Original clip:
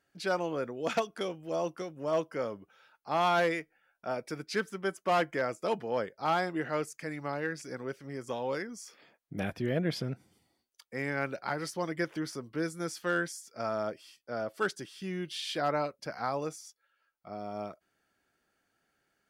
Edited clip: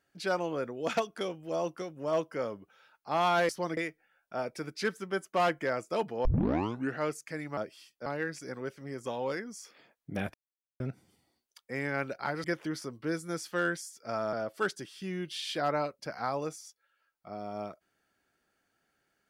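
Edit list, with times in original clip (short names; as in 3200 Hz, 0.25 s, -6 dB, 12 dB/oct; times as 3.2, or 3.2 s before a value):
5.97 tape start 0.71 s
9.57–10.03 mute
11.67–11.95 move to 3.49
13.84–14.33 move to 7.29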